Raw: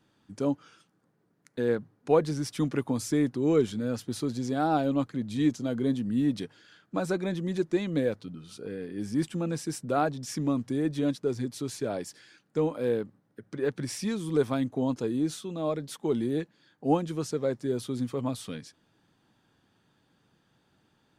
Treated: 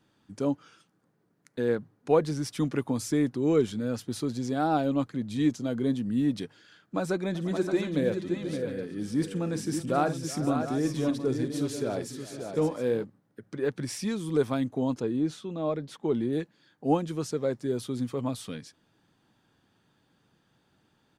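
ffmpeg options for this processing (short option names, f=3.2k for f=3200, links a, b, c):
-filter_complex "[0:a]asplit=3[a][b][c];[a]afade=t=out:st=7.34:d=0.02[d];[b]aecho=1:1:52|370|490|565|571|713:0.211|0.126|0.15|0.133|0.447|0.251,afade=t=in:st=7.34:d=0.02,afade=t=out:st=13.03:d=0.02[e];[c]afade=t=in:st=13.03:d=0.02[f];[d][e][f]amix=inputs=3:normalize=0,asettb=1/sr,asplit=3[g][h][i];[g]atrim=end=15.004[j];[h]atrim=start=15:end=16.33,asetpts=PTS-STARTPTS,afade=t=in:d=0.004:c=qsin,afade=t=out:st=1.326:d=0.004:c=qsin,aemphasis=mode=reproduction:type=50fm[k];[i]atrim=start=16.326[l];[j][k]acrossfade=d=0.004:c1=hsin:c2=qsin[m];[m][l]acrossfade=d=0.004:c1=qsin:c2=hsin"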